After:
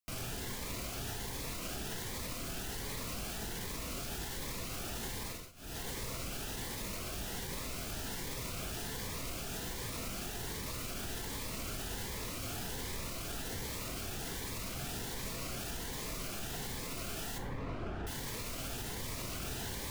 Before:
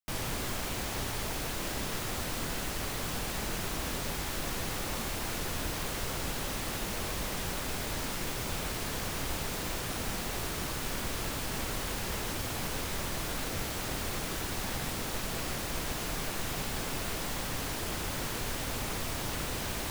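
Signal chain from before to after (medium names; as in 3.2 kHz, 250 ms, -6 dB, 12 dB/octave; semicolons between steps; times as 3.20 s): 17.38–18.07 s: low-pass 1.5 kHz 12 dB/octave; peak limiter -32 dBFS, peak gain reduction 10.5 dB; two-slope reverb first 0.48 s, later 1.6 s, from -26 dB, DRR 6.5 dB; 5.26–5.81 s: dip -19.5 dB, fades 0.26 s; Shepard-style phaser rising 1.3 Hz; trim +1 dB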